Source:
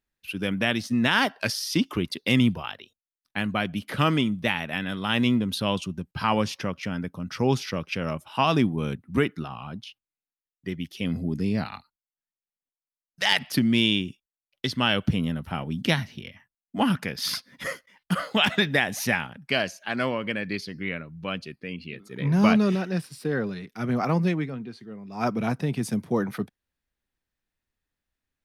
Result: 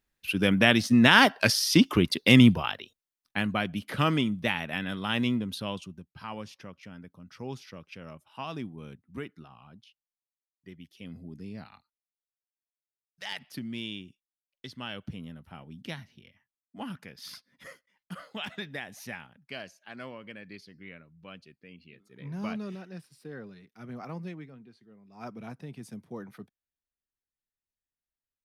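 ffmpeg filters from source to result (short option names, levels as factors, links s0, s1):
-af "volume=1.58,afade=t=out:st=2.55:d=1.1:silence=0.446684,afade=t=out:st=4.92:d=1.23:silence=0.237137"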